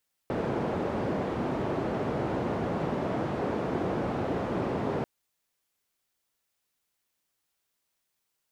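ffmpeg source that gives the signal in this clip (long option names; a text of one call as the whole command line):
ffmpeg -f lavfi -i "anoisesrc=color=white:duration=4.74:sample_rate=44100:seed=1,highpass=frequency=100,lowpass=frequency=530,volume=-8.6dB" out.wav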